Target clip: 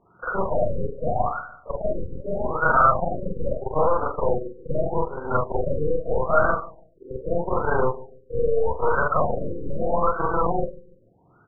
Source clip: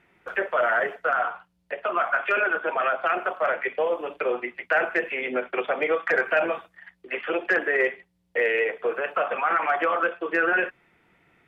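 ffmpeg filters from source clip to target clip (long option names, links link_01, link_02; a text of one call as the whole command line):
ffmpeg -i in.wav -filter_complex "[0:a]afftfilt=real='re':imag='-im':win_size=4096:overlap=0.75,equalizer=frequency=110:width=4.4:gain=11,acrossover=split=410|760[link_01][link_02][link_03];[link_01]acompressor=threshold=-51dB:ratio=4[link_04];[link_02]aeval=exprs='0.075*(cos(1*acos(clip(val(0)/0.075,-1,1)))-cos(1*PI/2))+0.0299*(cos(8*acos(clip(val(0)/0.075,-1,1)))-cos(8*PI/2))':channel_layout=same[link_05];[link_03]highshelf=frequency=2200:width_type=q:width=3:gain=-13.5[link_06];[link_04][link_05][link_06]amix=inputs=3:normalize=0,asplit=2[link_07][link_08];[link_08]adelay=145,lowpass=frequency=2300:poles=1,volume=-18.5dB,asplit=2[link_09][link_10];[link_10]adelay=145,lowpass=frequency=2300:poles=1,volume=0.35,asplit=2[link_11][link_12];[link_12]adelay=145,lowpass=frequency=2300:poles=1,volume=0.35[link_13];[link_07][link_09][link_11][link_13]amix=inputs=4:normalize=0,afftfilt=real='re*lt(b*sr/1024,530*pow(1600/530,0.5+0.5*sin(2*PI*0.8*pts/sr)))':imag='im*lt(b*sr/1024,530*pow(1600/530,0.5+0.5*sin(2*PI*0.8*pts/sr)))':win_size=1024:overlap=0.75,volume=8.5dB" out.wav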